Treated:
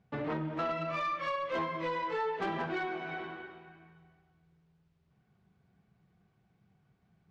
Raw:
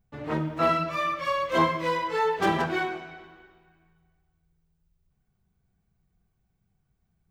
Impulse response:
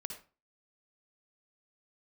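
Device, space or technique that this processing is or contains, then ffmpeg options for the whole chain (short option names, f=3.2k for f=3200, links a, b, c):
AM radio: -filter_complex "[0:a]asettb=1/sr,asplit=3[a][b][c];[a]atrim=end=0.654[d];[b]atrim=start=0.65:end=1.36,asetpts=PTS-STARTPTS,afade=t=in:d=0.004:c=qsin,afade=t=out:st=0.706:d=0.004:c=qsin,asplit=2[e][f];[f]adelay=38,volume=-5dB[g];[e][g]amix=inputs=2:normalize=0,atrim=end_sample=31311[h];[c]atrim=start=1.356[i];[d][h]acrossfade=d=0.004:c1=hsin:c2=qsin[j];[j][i]acrossfade=d=0.004:c1=qsin:c2=hsin,highpass=130,lowpass=3.5k,acompressor=threshold=-41dB:ratio=4,asoftclip=type=tanh:threshold=-34dB,volume=8dB"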